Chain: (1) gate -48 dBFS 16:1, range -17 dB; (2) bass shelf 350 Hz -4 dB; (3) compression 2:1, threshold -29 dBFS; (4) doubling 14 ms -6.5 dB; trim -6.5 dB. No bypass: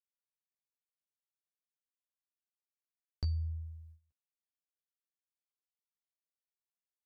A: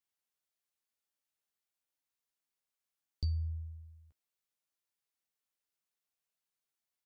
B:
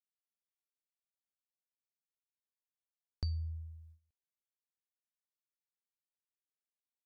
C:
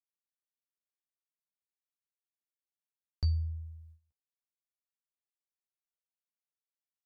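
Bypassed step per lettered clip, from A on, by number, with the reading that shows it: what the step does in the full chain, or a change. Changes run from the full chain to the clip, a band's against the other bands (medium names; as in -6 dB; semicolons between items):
1, 500 Hz band -5.5 dB; 4, 125 Hz band -2.0 dB; 3, 4 kHz band +3.5 dB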